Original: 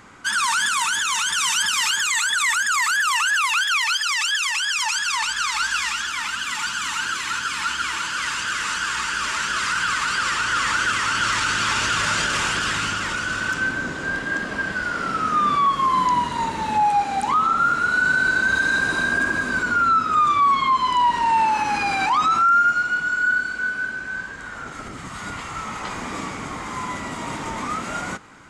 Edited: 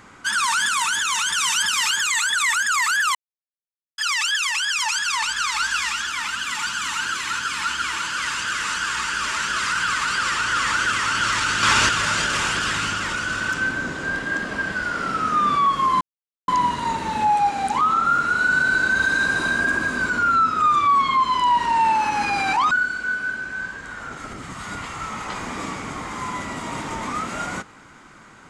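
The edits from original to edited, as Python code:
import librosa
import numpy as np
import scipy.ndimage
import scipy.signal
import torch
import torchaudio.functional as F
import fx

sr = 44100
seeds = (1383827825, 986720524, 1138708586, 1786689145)

y = fx.edit(x, sr, fx.silence(start_s=3.15, length_s=0.83),
    fx.clip_gain(start_s=11.63, length_s=0.26, db=5.0),
    fx.insert_silence(at_s=16.01, length_s=0.47),
    fx.cut(start_s=22.24, length_s=1.02), tone=tone)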